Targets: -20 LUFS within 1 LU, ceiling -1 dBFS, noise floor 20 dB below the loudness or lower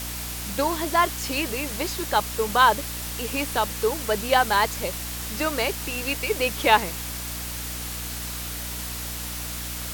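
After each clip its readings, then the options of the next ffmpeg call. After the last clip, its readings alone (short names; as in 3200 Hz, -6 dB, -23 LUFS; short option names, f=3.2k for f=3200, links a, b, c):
hum 60 Hz; harmonics up to 300 Hz; hum level -34 dBFS; noise floor -33 dBFS; noise floor target -45 dBFS; loudness -25.0 LUFS; peak -3.0 dBFS; loudness target -20.0 LUFS
-> -af "bandreject=f=60:t=h:w=4,bandreject=f=120:t=h:w=4,bandreject=f=180:t=h:w=4,bandreject=f=240:t=h:w=4,bandreject=f=300:t=h:w=4"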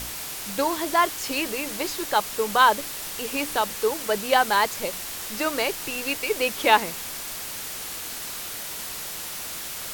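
hum none; noise floor -34 dBFS; noise floor target -45 dBFS
-> -af "afftdn=nr=11:nf=-34"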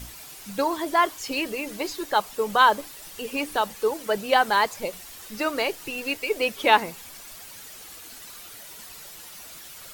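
noise floor -43 dBFS; noise floor target -45 dBFS
-> -af "afftdn=nr=6:nf=-43"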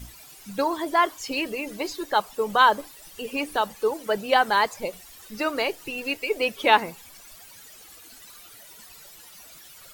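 noise floor -48 dBFS; loudness -24.5 LUFS; peak -3.0 dBFS; loudness target -20.0 LUFS
-> -af "volume=4.5dB,alimiter=limit=-1dB:level=0:latency=1"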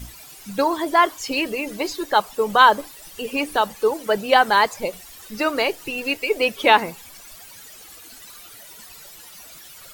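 loudness -20.0 LUFS; peak -1.0 dBFS; noise floor -43 dBFS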